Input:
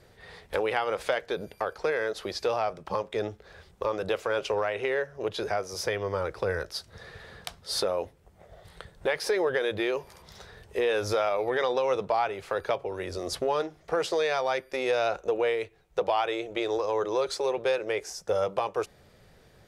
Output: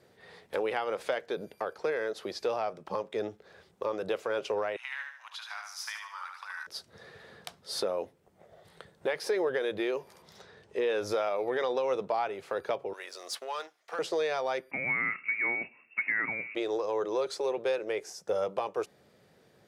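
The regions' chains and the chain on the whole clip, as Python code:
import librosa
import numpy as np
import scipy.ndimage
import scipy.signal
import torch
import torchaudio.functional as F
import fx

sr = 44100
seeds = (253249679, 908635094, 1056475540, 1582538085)

y = fx.chain(x, sr, fx.steep_highpass(hz=940.0, slope=48),
    fx.echo_feedback(ms=75, feedback_pct=39, wet_db=-4.5), at=(4.76, 6.67))
y = fx.chain(y, sr, fx.lowpass(hz=7300.0, slope=12),
    fx.notch(hz=720.0, q=24.0), at=(10.41, 11.02))
y = fx.chain(y, sr, fx.highpass(hz=1100.0, slope=12),
    fx.leveller(passes=1), at=(12.93, 13.99))
y = fx.chain(y, sr, fx.law_mismatch(coded='mu'),
    fx.freq_invert(carrier_hz=2700), at=(14.71, 16.55))
y = scipy.signal.sosfilt(scipy.signal.butter(2, 230.0, 'highpass', fs=sr, output='sos'), y)
y = fx.low_shelf(y, sr, hz=310.0, db=9.5)
y = y * 10.0 ** (-5.5 / 20.0)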